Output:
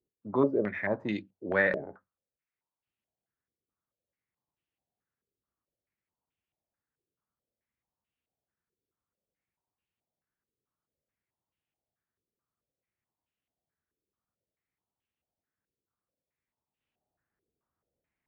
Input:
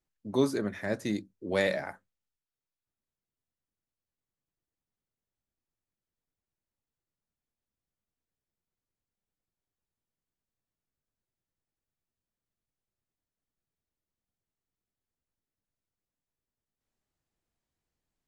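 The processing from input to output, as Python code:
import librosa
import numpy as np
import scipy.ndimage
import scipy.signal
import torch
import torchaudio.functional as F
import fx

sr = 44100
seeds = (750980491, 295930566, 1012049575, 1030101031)

y = scipy.signal.sosfilt(scipy.signal.butter(2, 57.0, 'highpass', fs=sr, output='sos'), x)
y = fx.filter_held_lowpass(y, sr, hz=4.6, low_hz=420.0, high_hz=2800.0)
y = F.gain(torch.from_numpy(y), -1.5).numpy()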